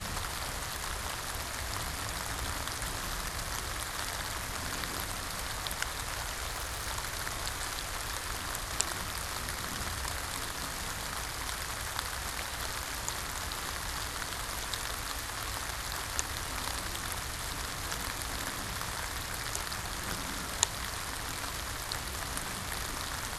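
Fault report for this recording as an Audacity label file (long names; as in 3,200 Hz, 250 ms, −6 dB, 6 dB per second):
6.470000	6.890000	clipping −30.5 dBFS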